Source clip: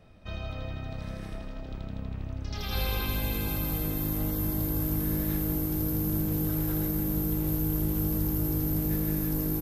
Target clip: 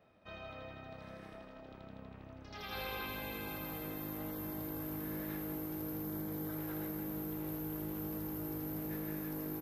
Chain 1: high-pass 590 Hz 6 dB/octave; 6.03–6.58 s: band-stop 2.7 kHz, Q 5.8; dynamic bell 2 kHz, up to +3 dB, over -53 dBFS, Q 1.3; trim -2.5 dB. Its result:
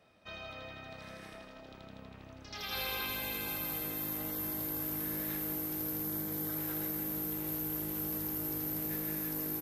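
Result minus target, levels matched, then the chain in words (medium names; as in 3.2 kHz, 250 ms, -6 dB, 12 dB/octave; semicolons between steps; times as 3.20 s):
8 kHz band +6.0 dB
high-pass 590 Hz 6 dB/octave; peaking EQ 8.3 kHz -13 dB 2.6 oct; 6.03–6.58 s: band-stop 2.7 kHz, Q 5.8; dynamic bell 2 kHz, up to +3 dB, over -53 dBFS, Q 1.3; trim -2.5 dB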